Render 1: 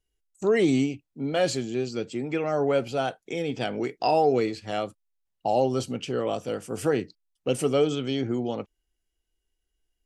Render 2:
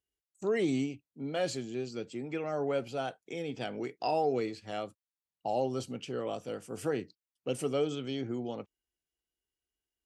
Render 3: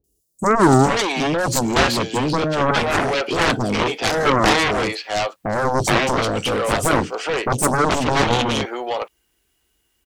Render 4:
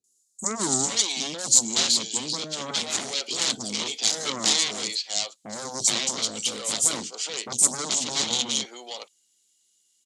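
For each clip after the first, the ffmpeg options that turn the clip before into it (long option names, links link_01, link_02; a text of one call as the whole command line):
ffmpeg -i in.wav -af "highpass=76,volume=-8dB" out.wav
ffmpeg -i in.wav -filter_complex "[0:a]aeval=exprs='0.119*sin(PI/2*1.78*val(0)/0.119)':channel_layout=same,acrossover=split=550|5200[link_01][link_02][link_03];[link_03]adelay=40[link_04];[link_02]adelay=420[link_05];[link_01][link_05][link_04]amix=inputs=3:normalize=0,aeval=exprs='0.188*(cos(1*acos(clip(val(0)/0.188,-1,1)))-cos(1*PI/2))+0.0944*(cos(7*acos(clip(val(0)/0.188,-1,1)))-cos(7*PI/2))':channel_layout=same,volume=8dB" out.wav
ffmpeg -i in.wav -af "aexciter=amount=7.4:drive=5.6:freq=2400,highpass=150,equalizer=frequency=220:width_type=q:width=4:gain=7,equalizer=frequency=2600:width_type=q:width=4:gain=-8,equalizer=frequency=4000:width_type=q:width=4:gain=3,equalizer=frequency=7000:width_type=q:width=4:gain=8,lowpass=frequency=9500:width=0.5412,lowpass=frequency=9500:width=1.3066,volume=-17dB" out.wav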